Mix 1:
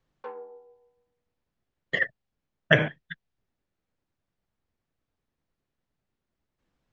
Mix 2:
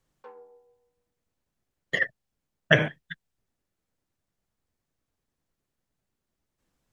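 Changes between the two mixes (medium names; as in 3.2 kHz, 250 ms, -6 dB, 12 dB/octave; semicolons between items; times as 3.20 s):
background -8.0 dB; master: remove low-pass 4.3 kHz 12 dB/octave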